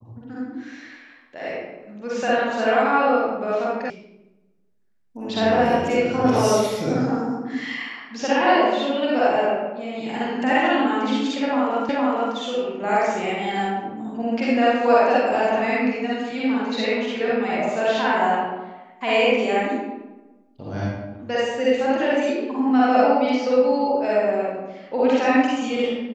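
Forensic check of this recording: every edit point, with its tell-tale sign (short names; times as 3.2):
3.9 sound cut off
11.89 repeat of the last 0.46 s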